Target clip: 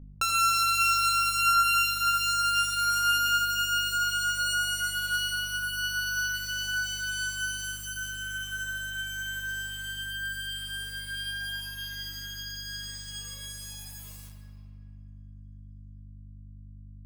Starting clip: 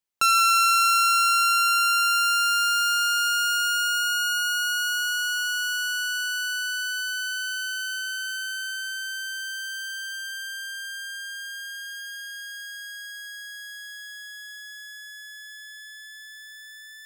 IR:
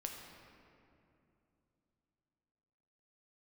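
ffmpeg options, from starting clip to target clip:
-filter_complex "[0:a]acrusher=bits=5:mix=0:aa=0.000001,aeval=exprs='val(0)+0.0112*(sin(2*PI*50*n/s)+sin(2*PI*2*50*n/s)/2+sin(2*PI*3*50*n/s)/3+sin(2*PI*4*50*n/s)/4+sin(2*PI*5*50*n/s)/5)':c=same[s0];[1:a]atrim=start_sample=2205[s1];[s0][s1]afir=irnorm=-1:irlink=0,volume=0.841"

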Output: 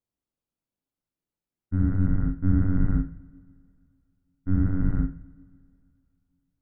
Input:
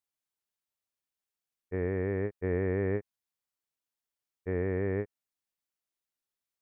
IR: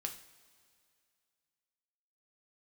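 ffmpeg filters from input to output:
-filter_complex "[0:a]afreqshift=-370,tiltshelf=f=900:g=8.5,bandreject=f=1800:w=27,asplit=2[s0][s1];[1:a]atrim=start_sample=2205,adelay=42[s2];[s1][s2]afir=irnorm=-1:irlink=0,volume=0.708[s3];[s0][s3]amix=inputs=2:normalize=0"

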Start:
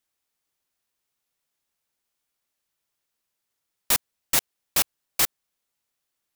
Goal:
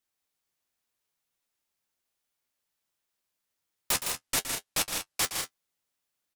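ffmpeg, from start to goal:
-filter_complex "[0:a]asplit=3[s0][s1][s2];[s0]afade=t=out:st=3.91:d=0.02[s3];[s1]lowpass=12000,afade=t=in:st=3.91:d=0.02,afade=t=out:st=5.24:d=0.02[s4];[s2]afade=t=in:st=5.24:d=0.02[s5];[s3][s4][s5]amix=inputs=3:normalize=0,flanger=delay=9.8:depth=3.2:regen=-36:speed=0.64:shape=triangular,aecho=1:1:116.6|160.3|192.4:0.282|0.501|0.316"

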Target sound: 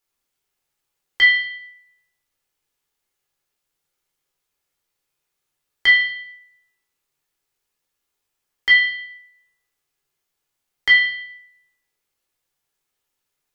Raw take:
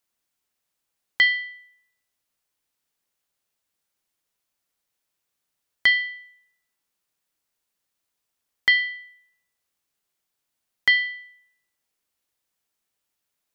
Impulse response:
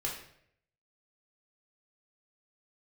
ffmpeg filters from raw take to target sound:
-filter_complex "[0:a]tremolo=f=84:d=0.261[s0];[1:a]atrim=start_sample=2205[s1];[s0][s1]afir=irnorm=-1:irlink=0,volume=1.12"

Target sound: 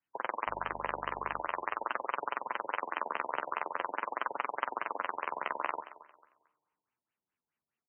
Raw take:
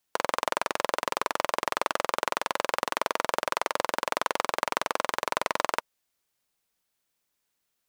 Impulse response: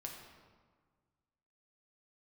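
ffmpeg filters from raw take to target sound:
-filter_complex "[0:a]acrossover=split=260[s0][s1];[s0]aeval=exprs='(mod(299*val(0)+1,2)-1)/299':c=same[s2];[s1]equalizer=f=560:t=o:w=1.1:g=-8[s3];[s2][s3]amix=inputs=2:normalize=0,flanger=delay=7:depth=6.6:regen=-23:speed=0.45:shape=sinusoidal,asettb=1/sr,asplit=3[s4][s5][s6];[s4]atrim=end=0.474[s7];[s5]atrim=start=0.47:end=1.41,asetpts=PTS-STARTPTS,afade=t=in:d=0.004:c=qsin,afade=t=out:st=0.936:d=0.004:c=qsin,aeval=exprs='val(0)+0.00398*(sin(2*PI*50*n/s)+sin(2*PI*2*50*n/s)/2+sin(2*PI*3*50*n/s)/3+sin(2*PI*4*50*n/s)/4+sin(2*PI*5*50*n/s)/5)':c=same[s8];[s6]atrim=start=1.406[s9];[s7][s8]acrossfade=d=0.004:c1=hsin:c2=qsin[s10];[s10][s9]acrossfade=d=0.004:c1=qsin:c2=hsin,highpass=f=98:p=1,aecho=1:1:224|448|672:0.158|0.0428|0.0116,asplit=2[s11][s12];[1:a]atrim=start_sample=2205[s13];[s12][s13]afir=irnorm=-1:irlink=0,volume=0.188[s14];[s11][s14]amix=inputs=2:normalize=0,afftfilt=real='re*lt(b*sr/1024,960*pow(3200/960,0.5+0.5*sin(2*PI*4.8*pts/sr)))':imag='im*lt(b*sr/1024,960*pow(3200/960,0.5+0.5*sin(2*PI*4.8*pts/sr)))':win_size=1024:overlap=0.75"

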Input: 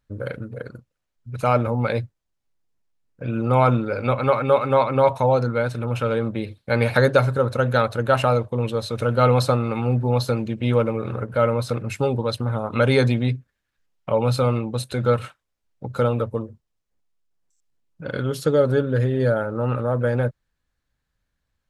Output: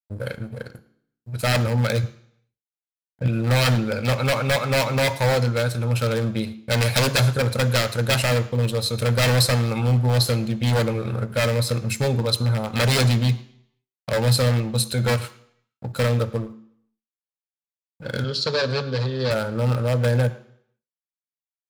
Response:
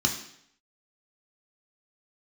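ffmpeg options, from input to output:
-filter_complex "[0:a]asettb=1/sr,asplit=3[s0][s1][s2];[s0]atrim=end=2.034[s3];[s1]atrim=start=2.03:end=3.28,asetpts=PTS-STARTPTS,afade=t=in:d=0.004:c=qsin,afade=t=out:st=1.246:d=0.004:c=qsin,lowshelf=f=400:g=7.5[s4];[s2]atrim=start=3.276[s5];[s3][s4]acrossfade=d=0.004:c1=hsin:c2=qsin[s6];[s6][s5]acrossfade=d=0.004:c1=qsin:c2=hsin,aeval=exprs='0.178*(abs(mod(val(0)/0.178+3,4)-2)-1)':c=same,crystalizer=i=3:c=0,aeval=exprs='sgn(val(0))*max(abs(val(0))-0.00841,0)':c=same,asettb=1/sr,asplit=3[s7][s8][s9];[s7]atrim=end=18.244[s10];[s8]atrim=start=18.24:end=19.31,asetpts=PTS-STARTPTS,afade=t=in:d=0.004:c=qsin,afade=t=out:st=1.066:d=0.004:c=qsin,highpass=170,equalizer=f=300:t=q:w=4:g=-8,equalizer=f=740:t=q:w=4:g=-6,equalizer=f=2100:t=q:w=4:g=-6,equalizer=f=4400:t=q:w=4:g=10,lowpass=f=5500:w=0.5412,lowpass=f=5500:w=1.3066[s11];[s9]atrim=start=19.306[s12];[s10][s11]acrossfade=d=0.004:c1=hsin:c2=qsin[s13];[s13][s12]acrossfade=d=0.004:c1=qsin:c2=hsin,asplit=2[s14][s15];[s15]adelay=110,highpass=300,lowpass=3400,asoftclip=type=hard:threshold=0.168,volume=0.112[s16];[s14][s16]amix=inputs=2:normalize=0,asplit=2[s17][s18];[1:a]atrim=start_sample=2205[s19];[s18][s19]afir=irnorm=-1:irlink=0,volume=0.112[s20];[s17][s20]amix=inputs=2:normalize=0"

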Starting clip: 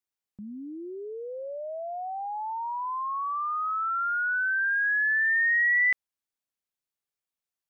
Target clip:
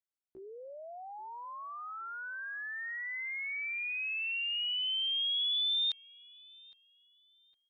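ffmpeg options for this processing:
-filter_complex "[0:a]asplit=2[s0][s1];[s1]adelay=810,lowpass=f=1300:p=1,volume=0.1,asplit=2[s2][s3];[s3]adelay=810,lowpass=f=1300:p=1,volume=0.46,asplit=2[s4][s5];[s5]adelay=810,lowpass=f=1300:p=1,volume=0.46[s6];[s0][s2][s4][s6]amix=inputs=4:normalize=0,asetrate=80880,aresample=44100,atempo=0.545254,volume=0.398"

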